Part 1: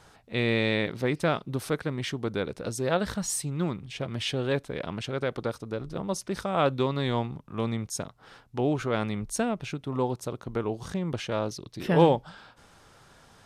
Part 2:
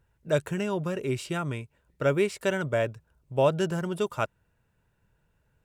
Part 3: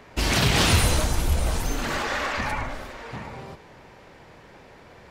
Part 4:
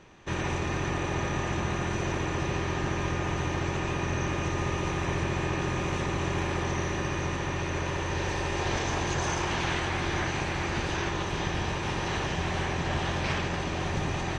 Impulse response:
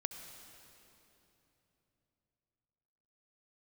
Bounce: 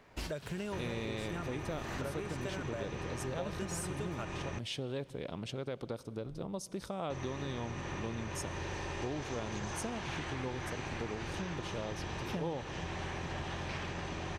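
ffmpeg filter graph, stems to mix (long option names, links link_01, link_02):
-filter_complex "[0:a]equalizer=frequency=1600:width=1.3:gain=-6.5,adelay=450,volume=-6dB,asplit=2[link_01][link_02];[link_02]volume=-12.5dB[link_03];[1:a]acompressor=threshold=-25dB:ratio=6,volume=-5dB,asplit=2[link_04][link_05];[2:a]volume=-12dB[link_06];[3:a]adelay=450,volume=-6dB,asplit=3[link_07][link_08][link_09];[link_07]atrim=end=4.59,asetpts=PTS-STARTPTS,afade=type=out:start_time=4.586:duration=0.004:curve=hsin[link_10];[link_08]atrim=start=4.59:end=7.1,asetpts=PTS-STARTPTS,volume=0[link_11];[link_09]atrim=start=7.1,asetpts=PTS-STARTPTS,afade=type=in:duration=0.004:curve=hsin[link_12];[link_10][link_11][link_12]concat=n=3:v=0:a=1[link_13];[link_05]apad=whole_len=225313[link_14];[link_06][link_14]sidechaincompress=threshold=-55dB:ratio=6:attack=41:release=173[link_15];[4:a]atrim=start_sample=2205[link_16];[link_03][link_16]afir=irnorm=-1:irlink=0[link_17];[link_01][link_04][link_15][link_13][link_17]amix=inputs=5:normalize=0,acompressor=threshold=-36dB:ratio=4"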